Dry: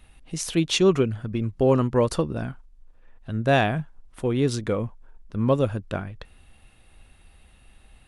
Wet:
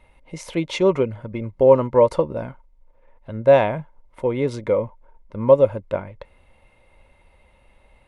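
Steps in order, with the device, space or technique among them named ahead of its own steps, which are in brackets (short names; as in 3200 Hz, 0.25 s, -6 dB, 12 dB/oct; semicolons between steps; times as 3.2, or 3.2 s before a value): inside a helmet (high shelf 4400 Hz -8.5 dB; small resonant body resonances 560/920/2100 Hz, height 16 dB, ringing for 30 ms); gain -3.5 dB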